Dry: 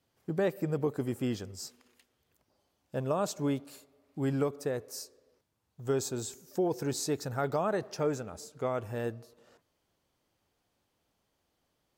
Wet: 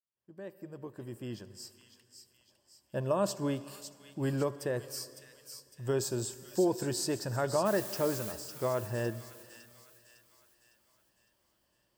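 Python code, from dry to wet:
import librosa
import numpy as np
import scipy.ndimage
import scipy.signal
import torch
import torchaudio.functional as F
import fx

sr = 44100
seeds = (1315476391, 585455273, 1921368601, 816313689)

p1 = fx.fade_in_head(x, sr, length_s=3.39)
p2 = fx.ripple_eq(p1, sr, per_octave=1.3, db=7)
p3 = fx.dmg_noise_colour(p2, sr, seeds[0], colour='blue', level_db=-43.0, at=(7.65, 8.31), fade=0.02)
p4 = p3 + fx.echo_wet_highpass(p3, sr, ms=556, feedback_pct=49, hz=2600.0, wet_db=-7, dry=0)
y = fx.rev_plate(p4, sr, seeds[1], rt60_s=2.7, hf_ratio=0.85, predelay_ms=0, drr_db=15.5)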